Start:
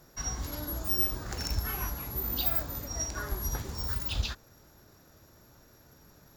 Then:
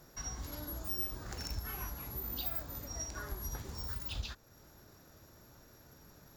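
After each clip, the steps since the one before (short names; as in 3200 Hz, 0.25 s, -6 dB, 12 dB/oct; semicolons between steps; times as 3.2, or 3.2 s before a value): compressor 1.5:1, threshold -48 dBFS, peak gain reduction 9 dB; gain -1 dB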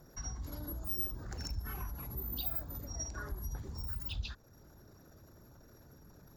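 formant sharpening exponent 1.5; gain +1 dB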